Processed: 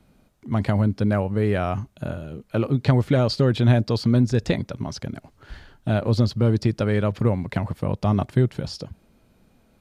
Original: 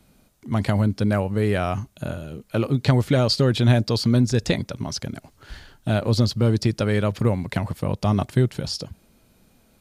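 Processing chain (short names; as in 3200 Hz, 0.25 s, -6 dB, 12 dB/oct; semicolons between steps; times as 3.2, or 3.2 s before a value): high shelf 3800 Hz -10.5 dB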